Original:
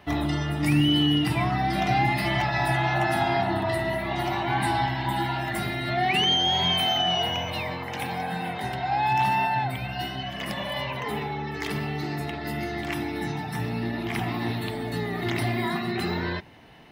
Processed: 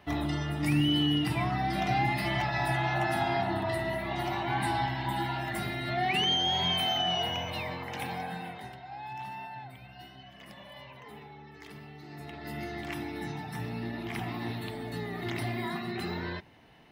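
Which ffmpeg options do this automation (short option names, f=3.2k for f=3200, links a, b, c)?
-af "volume=5.5dB,afade=t=out:st=8.1:d=0.72:silence=0.237137,afade=t=in:st=12.04:d=0.56:silence=0.298538"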